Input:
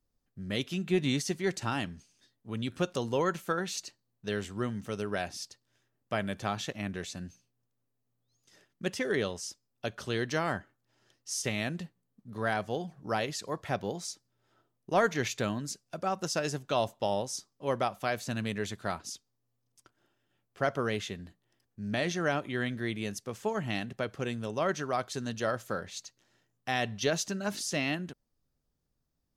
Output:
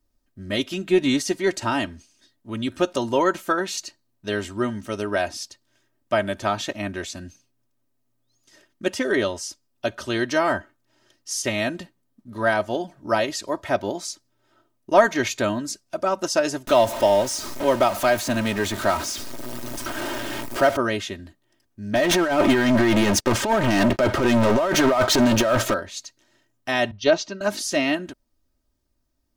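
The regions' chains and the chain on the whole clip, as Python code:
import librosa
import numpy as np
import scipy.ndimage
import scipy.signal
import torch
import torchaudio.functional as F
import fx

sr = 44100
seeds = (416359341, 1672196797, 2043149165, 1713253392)

y = fx.chain(x, sr, fx.zero_step(step_db=-35.0),
    fx.band_squash(depth_pct=40), at=(16.67, 20.77))
y = fx.chain(y, sr, fx.lowpass(hz=3300.0, slope=6),
    fx.over_compress(threshold_db=-37.0, ratio=-0.5),
    fx.leveller(passes=5), at=(21.95, 25.74))
y = fx.chain(y, sr, fx.lowpass(hz=5200.0, slope=24),
    fx.notch(hz=1700.0, q=7.5),
    fx.band_widen(depth_pct=100), at=(26.91, 27.41))
y = fx.dynamic_eq(y, sr, hz=740.0, q=0.73, threshold_db=-42.0, ratio=4.0, max_db=4)
y = y + 0.71 * np.pad(y, (int(3.2 * sr / 1000.0), 0))[:len(y)]
y = F.gain(torch.from_numpy(y), 5.5).numpy()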